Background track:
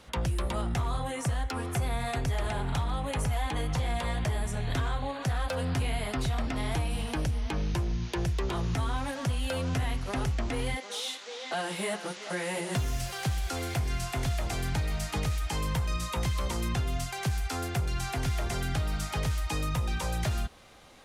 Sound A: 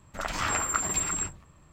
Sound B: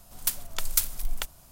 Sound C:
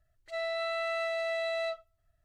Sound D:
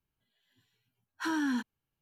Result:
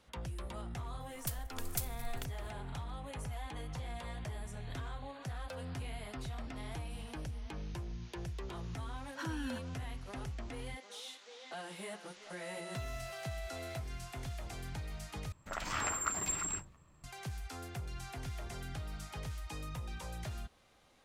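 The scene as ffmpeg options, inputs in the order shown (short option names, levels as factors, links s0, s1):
-filter_complex "[0:a]volume=0.237[s0];[4:a]acompressor=threshold=0.0224:ratio=6:attack=3.2:release=140:knee=1:detection=peak[s1];[s0]asplit=2[s2][s3];[s2]atrim=end=15.324[s4];[1:a]atrim=end=1.72,asetpts=PTS-STARTPTS,volume=0.422[s5];[s3]atrim=start=17.036[s6];[2:a]atrim=end=1.51,asetpts=PTS-STARTPTS,volume=0.211,afade=t=in:d=0.004:c=hsin,afade=t=out:st=1.506:d=0.004:c=hsin,adelay=1000[s7];[s1]atrim=end=2.01,asetpts=PTS-STARTPTS,volume=0.562,afade=t=in:d=0.004:c=hsin,afade=t=out:st=2.006:d=0.004:c=hsin,adelay=7970[s8];[3:a]atrim=end=2.24,asetpts=PTS-STARTPTS,volume=0.188,afade=t=in:d=0.004:c=hsin,afade=t=out:st=2.236:d=0.004:c=hsin,adelay=12070[s9];[s4][s5]acrossfade=d=0.004:c1=hsin:c2=hsin[s10];[s10][s6]acrossfade=d=0.004:c1=hsin:c2=hsin[s11];[s11][s7][s8][s9]amix=inputs=4:normalize=0"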